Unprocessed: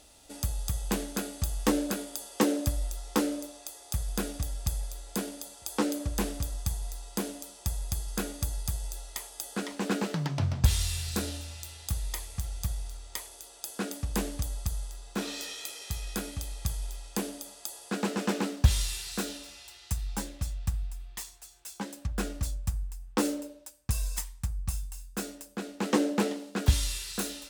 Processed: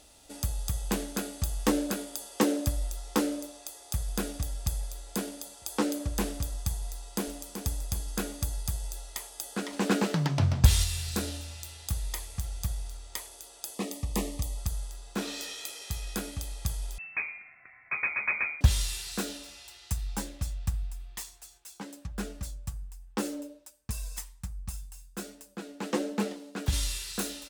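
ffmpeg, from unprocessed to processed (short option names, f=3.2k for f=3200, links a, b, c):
-filter_complex "[0:a]asplit=2[a][b];[b]afade=t=in:st=6.89:d=0.01,afade=t=out:st=7.48:d=0.01,aecho=0:1:380|760|1140|1520:0.421697|0.126509|0.0379527|0.0113858[c];[a][c]amix=inputs=2:normalize=0,asettb=1/sr,asplit=3[d][e][f];[d]atrim=end=13.744[g];[e]atrim=start=13.74:end=14.58,asetpts=PTS-STARTPTS,afade=t=in:d=0.004:c=qsin,afade=t=out:st=0.836:d=0.004:c=qsin,asuperstop=centerf=1500:order=8:qfactor=3.3[h];[f]atrim=start=14.576[i];[g][h]acrossfade=d=0.004:c1=hsin:c2=qsin[j];[j][i]acrossfade=d=0.004:c1=qsin:c2=hsin,asettb=1/sr,asplit=3[k][l][m];[k]atrim=end=16.984[n];[l]atrim=start=16.98:end=18.61,asetpts=PTS-STARTPTS,afade=t=in:d=0.004:c=qsin,afade=t=out:st=1.626:d=0.004:c=qsin,lowpass=f=2.3k:t=q:w=0.5098,lowpass=f=2.3k:t=q:w=0.6013,lowpass=f=2.3k:t=q:w=0.9,lowpass=f=2.3k:t=q:w=2.563,afreqshift=-2700[o];[m]atrim=start=18.606[p];[n][o]acrossfade=d=0.004:c1=hsin:c2=qsin[q];[q][p]acrossfade=d=0.004:c1=qsin:c2=hsin,asplit=3[r][s][t];[r]afade=t=out:st=21.57:d=0.02[u];[s]flanger=delay=4.5:depth=2.5:regen=52:speed=1.3:shape=sinusoidal,afade=t=in:st=21.57:d=0.02,afade=t=out:st=26.72:d=0.02[v];[t]afade=t=in:st=26.72:d=0.02[w];[u][v][w]amix=inputs=3:normalize=0,asplit=3[x][y][z];[x]atrim=end=9.732[aa];[y]atrim=start=9.728:end=10.842,asetpts=PTS-STARTPTS,volume=3.5dB[ab];[z]atrim=start=10.838[ac];[aa][ab]acrossfade=d=0.004:c1=hsin:c2=hsin[ad];[ad][ac]acrossfade=d=0.004:c1=hsin:c2=hsin"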